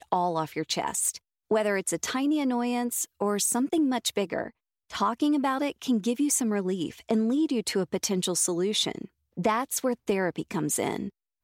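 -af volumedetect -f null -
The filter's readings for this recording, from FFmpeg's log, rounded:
mean_volume: -27.8 dB
max_volume: -10.5 dB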